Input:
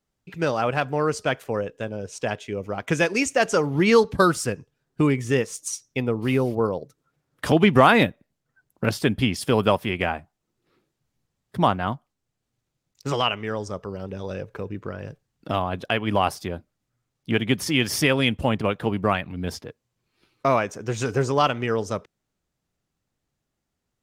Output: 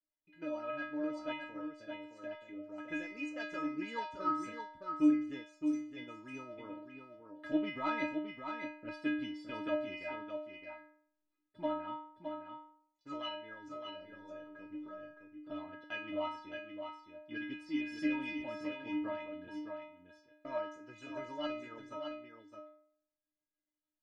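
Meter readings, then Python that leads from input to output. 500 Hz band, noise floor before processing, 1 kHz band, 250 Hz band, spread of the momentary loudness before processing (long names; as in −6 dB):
−18.5 dB, −81 dBFS, −17.0 dB, −12.0 dB, 14 LU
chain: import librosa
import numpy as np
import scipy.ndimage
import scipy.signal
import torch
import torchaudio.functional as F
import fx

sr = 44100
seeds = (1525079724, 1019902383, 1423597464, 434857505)

p1 = fx.self_delay(x, sr, depth_ms=0.054)
p2 = scipy.signal.sosfilt(scipy.signal.butter(2, 2800.0, 'lowpass', fs=sr, output='sos'), p1)
p3 = fx.low_shelf(p2, sr, hz=80.0, db=-8.0)
p4 = fx.rotary(p3, sr, hz=6.7)
p5 = fx.stiff_resonator(p4, sr, f0_hz=300.0, decay_s=0.66, stiffness=0.008)
p6 = p5 + fx.echo_single(p5, sr, ms=615, db=-6.5, dry=0)
y = F.gain(torch.from_numpy(p6), 5.0).numpy()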